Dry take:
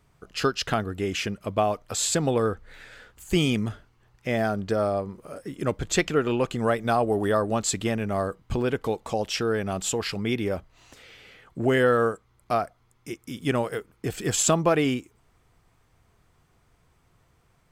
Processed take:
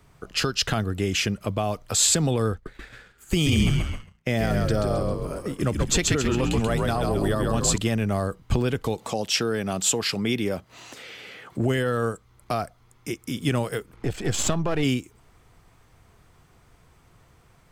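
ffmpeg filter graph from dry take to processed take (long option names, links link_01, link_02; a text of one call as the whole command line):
ffmpeg -i in.wav -filter_complex "[0:a]asettb=1/sr,asplit=3[link_01][link_02][link_03];[link_01]atrim=end=2.524[link_04];[link_02]atrim=start=2.52:end=7.78,asetpts=PTS-STARTPTS,afade=type=in:duration=0.004:curve=qsin,afade=type=out:start_time=5.256:duration=0.004:curve=qsin,asplit=6[link_05][link_06][link_07][link_08][link_09][link_10];[link_06]adelay=133,afreqshift=-68,volume=-3.5dB[link_11];[link_07]adelay=266,afreqshift=-136,volume=-11dB[link_12];[link_08]adelay=399,afreqshift=-204,volume=-18.6dB[link_13];[link_09]adelay=532,afreqshift=-272,volume=-26.1dB[link_14];[link_10]adelay=665,afreqshift=-340,volume=-33.6dB[link_15];[link_05][link_11][link_12][link_13][link_14][link_15]amix=inputs=6:normalize=0,atrim=end_sample=231966,agate=range=-33dB:threshold=-38dB:ratio=3:release=100:detection=peak[link_16];[link_03]atrim=start=7.776[link_17];[link_04][link_16]acrossfade=duration=0.004:curve1=hsin:curve2=qsin[link_18];[link_18][link_17]acrossfade=duration=0.004:curve1=qsin:curve2=hsin,asettb=1/sr,asplit=3[link_19][link_20][link_21];[link_19]atrim=end=8.984[link_22];[link_20]atrim=start=8.98:end=11.58,asetpts=PTS-STARTPTS,afade=type=in:duration=0.004:curve=qsin,afade=type=out:start_time=2.596:duration=0.004:curve=qsin,highpass=150,acompressor=mode=upward:threshold=-44dB:ratio=2.5:attack=3.2:release=140:knee=2.83:detection=peak[link_23];[link_21]atrim=start=11.576[link_24];[link_22][link_23]acrossfade=duration=0.004:curve1=hsin:curve2=qsin[link_25];[link_25][link_24]acrossfade=duration=0.004:curve1=qsin:curve2=hsin,asettb=1/sr,asplit=3[link_26][link_27][link_28];[link_26]atrim=end=13.934[link_29];[link_27]atrim=start=13.93:end=14.83,asetpts=PTS-STARTPTS,afade=type=in:duration=0.004:curve=qsin,afade=type=out:start_time=0.896:duration=0.004:curve=qsin,aeval=exprs='if(lt(val(0),0),0.447*val(0),val(0))':channel_layout=same,aemphasis=mode=reproduction:type=50kf,acompressor=mode=upward:threshold=-45dB:ratio=2.5:attack=3.2:release=140:knee=2.83:detection=peak[link_30];[link_28]atrim=start=14.826[link_31];[link_29][link_30]acrossfade=duration=0.004:curve1=hsin:curve2=qsin[link_32];[link_32][link_31]acrossfade=duration=0.004:curve1=qsin:curve2=hsin,alimiter=limit=-16dB:level=0:latency=1:release=22,acrossover=split=190|3000[link_33][link_34][link_35];[link_34]acompressor=threshold=-38dB:ratio=2[link_36];[link_33][link_36][link_35]amix=inputs=3:normalize=0,volume=7dB" out.wav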